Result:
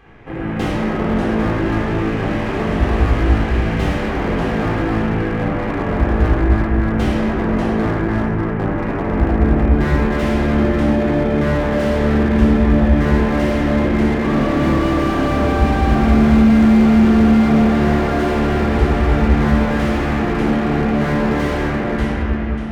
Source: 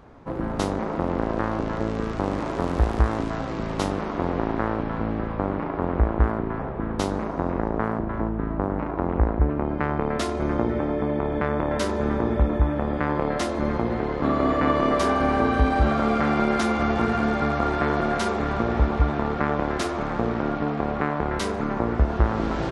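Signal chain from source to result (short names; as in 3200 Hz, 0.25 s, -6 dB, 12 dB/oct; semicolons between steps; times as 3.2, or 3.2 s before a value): ending faded out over 1.29 s; band shelf 2300 Hz +10.5 dB 1.2 oct; on a send: echo with dull and thin repeats by turns 0.295 s, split 1300 Hz, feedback 51%, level -3.5 dB; on the sum: shoebox room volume 1900 m³, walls mixed, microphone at 3.8 m; slew limiter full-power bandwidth 140 Hz; gain -2.5 dB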